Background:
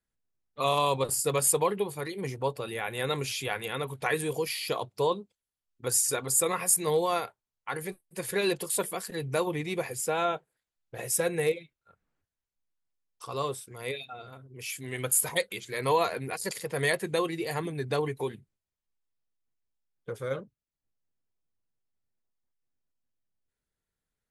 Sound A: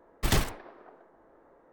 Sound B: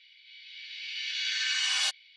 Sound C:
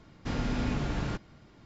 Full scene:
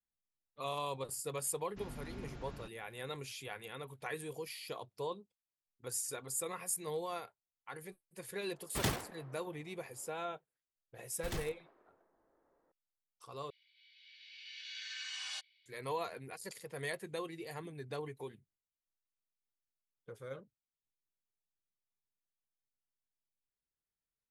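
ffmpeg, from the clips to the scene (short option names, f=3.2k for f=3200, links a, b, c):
-filter_complex "[1:a]asplit=2[a][b];[0:a]volume=-13dB[c];[a]highpass=84[d];[c]asplit=2[e][f];[e]atrim=end=13.504[g];[2:a]atrim=end=2.16,asetpts=PTS-STARTPTS,volume=-15dB[h];[f]atrim=start=15.656[i];[3:a]atrim=end=1.65,asetpts=PTS-STARTPTS,volume=-17dB,afade=t=in:d=0.004:c=hsin,afade=t=out:st=1.646:d=0.004:c=hsin,adelay=1510[j];[d]atrim=end=1.72,asetpts=PTS-STARTPTS,volume=-7dB,afade=t=in:d=0.004:c=hsin,afade=t=out:st=1.716:d=0.004:c=hsin,adelay=8520[k];[b]atrim=end=1.72,asetpts=PTS-STARTPTS,volume=-16dB,afade=t=in:d=0.004:c=hsin,afade=t=out:st=1.716:d=0.004:c=hsin,adelay=11000[l];[g][h]acrossfade=d=0.004:c1=hsin:c2=hsin[m];[m][i]acrossfade=d=0.004:c1=hsin:c2=hsin[n];[n][j][k][l]amix=inputs=4:normalize=0"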